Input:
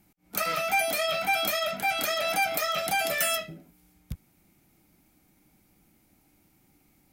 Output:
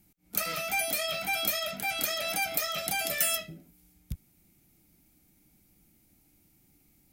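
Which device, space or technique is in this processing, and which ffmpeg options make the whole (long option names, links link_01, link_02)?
smiley-face EQ: -af "lowshelf=frequency=120:gain=4,equalizer=frequency=1000:width_type=o:width=1.9:gain=-6,highshelf=frequency=5400:gain=5,volume=-2.5dB"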